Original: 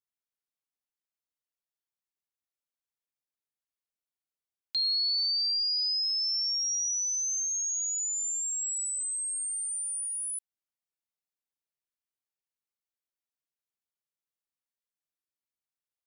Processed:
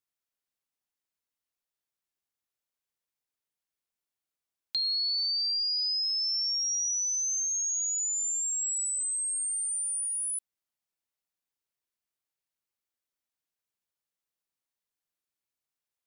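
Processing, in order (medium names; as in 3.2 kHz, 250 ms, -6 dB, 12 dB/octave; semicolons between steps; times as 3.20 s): compression, threshold -30 dBFS, peak gain reduction 4 dB; trim +2.5 dB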